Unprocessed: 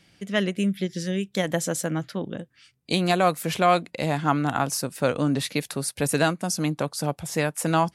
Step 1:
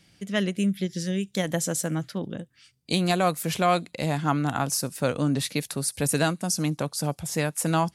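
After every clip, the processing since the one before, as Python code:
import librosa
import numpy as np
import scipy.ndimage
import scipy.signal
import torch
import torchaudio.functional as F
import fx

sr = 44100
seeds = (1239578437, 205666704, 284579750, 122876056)

y = fx.bass_treble(x, sr, bass_db=4, treble_db=5)
y = fx.echo_wet_highpass(y, sr, ms=70, feedback_pct=42, hz=5300.0, wet_db=-24.0)
y = F.gain(torch.from_numpy(y), -3.0).numpy()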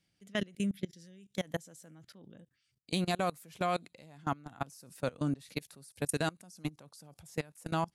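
y = fx.level_steps(x, sr, step_db=24)
y = F.gain(torch.from_numpy(y), -6.0).numpy()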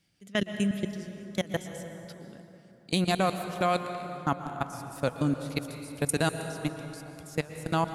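y = fx.rev_plate(x, sr, seeds[0], rt60_s=3.4, hf_ratio=0.5, predelay_ms=105, drr_db=7.5)
y = F.gain(torch.from_numpy(y), 5.5).numpy()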